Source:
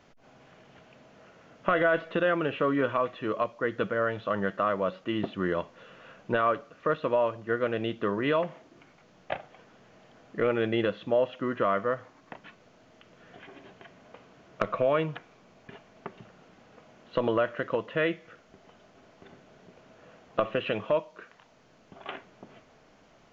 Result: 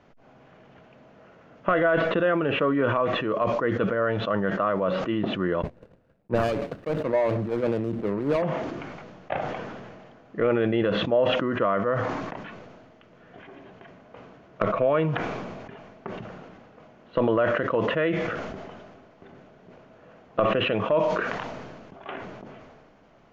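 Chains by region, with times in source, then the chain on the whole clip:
5.62–8.42 s: median filter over 41 samples + gate -54 dBFS, range -15 dB + three bands expanded up and down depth 100%
whole clip: low-pass 1.7 kHz 6 dB/octave; decay stretcher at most 30 dB/s; trim +3 dB

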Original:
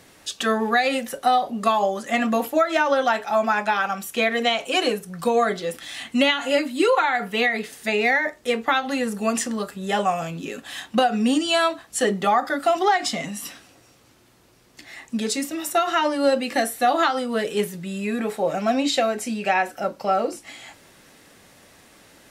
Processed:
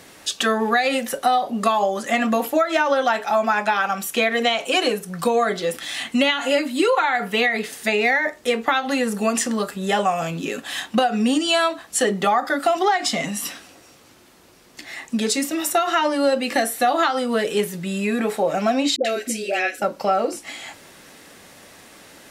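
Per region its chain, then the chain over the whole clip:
18.96–19.82 s: static phaser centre 390 Hz, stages 4 + phase dispersion highs, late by 88 ms, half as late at 790 Hz
whole clip: bass shelf 150 Hz -5 dB; hum notches 60/120 Hz; compression 2:1, threshold -25 dBFS; trim +6 dB

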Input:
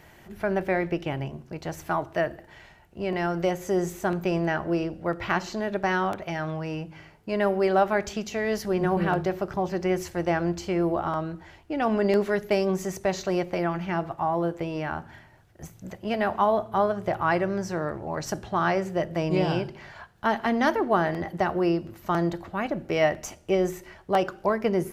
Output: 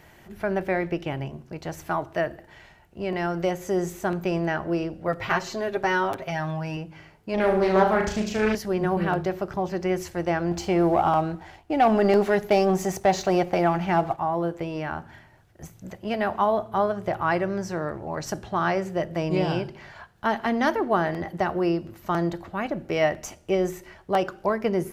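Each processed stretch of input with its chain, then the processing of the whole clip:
5.07–6.77 s: treble shelf 10 kHz +4.5 dB + comb 7.5 ms, depth 68%
7.34–8.55 s: bass shelf 130 Hz +11.5 dB + flutter echo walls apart 6.4 m, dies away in 0.56 s + loudspeaker Doppler distortion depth 0.33 ms
10.51–14.17 s: peaking EQ 770 Hz +9.5 dB 0.32 oct + waveshaping leveller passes 1
whole clip: none

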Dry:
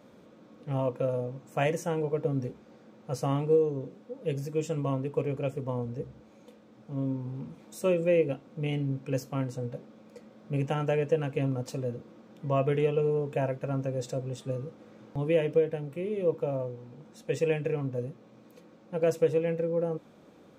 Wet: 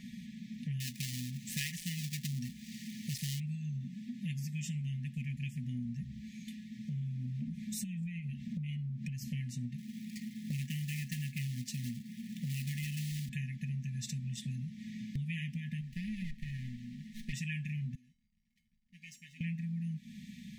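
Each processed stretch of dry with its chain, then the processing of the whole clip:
0.80–3.40 s: dead-time distortion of 0.12 ms + treble shelf 2.4 kHz +11 dB
7.48–9.28 s: bass shelf 300 Hz +8.5 dB + compression 5:1, threshold -38 dBFS
9.78–13.29 s: high-pass 90 Hz 24 dB/octave + short-mantissa float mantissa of 2-bit
15.81–17.33 s: bass shelf 270 Hz -10 dB + sliding maximum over 17 samples
17.95–19.41 s: frequency weighting A + hysteresis with a dead band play -49 dBFS + feedback comb 430 Hz, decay 0.38 s, harmonics odd, mix 90%
whole clip: FFT band-reject 250–1700 Hz; comb 4.8 ms, depth 43%; compression 5:1, threshold -47 dBFS; trim +10 dB

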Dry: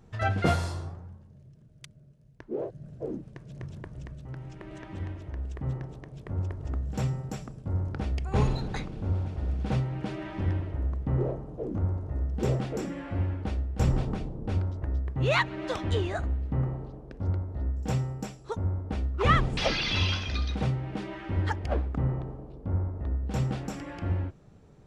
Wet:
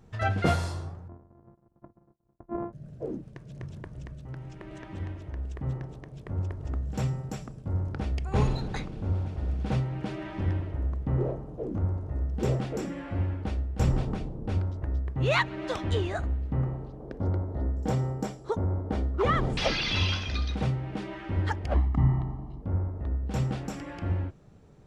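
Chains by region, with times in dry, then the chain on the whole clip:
1.08–2.73 s: sorted samples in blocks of 128 samples + expander -49 dBFS + low-pass 1.1 kHz 24 dB/octave
17.00–19.53 s: peaking EQ 480 Hz +7.5 dB 3 oct + band-stop 2.6 kHz, Q 9.1 + compression 2.5:1, threshold -23 dBFS
21.74–22.62 s: treble shelf 7.1 kHz -10.5 dB + comb 1 ms, depth 96%
whole clip: none

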